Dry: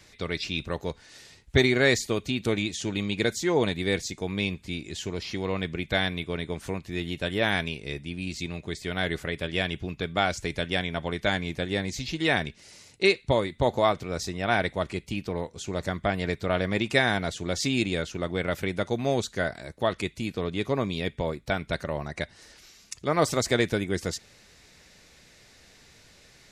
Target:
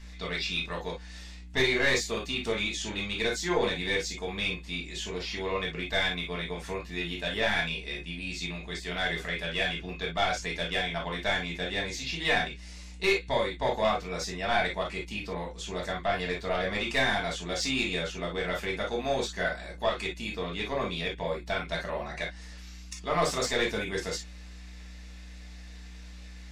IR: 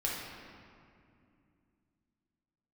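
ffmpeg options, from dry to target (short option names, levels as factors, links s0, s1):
-filter_complex "[0:a]asplit=2[s0][s1];[s1]highpass=f=720:p=1,volume=6.31,asoftclip=type=tanh:threshold=0.531[s2];[s0][s2]amix=inputs=2:normalize=0,lowpass=f=5400:p=1,volume=0.501,aeval=exprs='val(0)+0.0126*(sin(2*PI*60*n/s)+sin(2*PI*2*60*n/s)/2+sin(2*PI*3*60*n/s)/3+sin(2*PI*4*60*n/s)/4+sin(2*PI*5*60*n/s)/5)':c=same[s3];[1:a]atrim=start_sample=2205,atrim=end_sample=4410,asetrate=66150,aresample=44100[s4];[s3][s4]afir=irnorm=-1:irlink=0,volume=0.398"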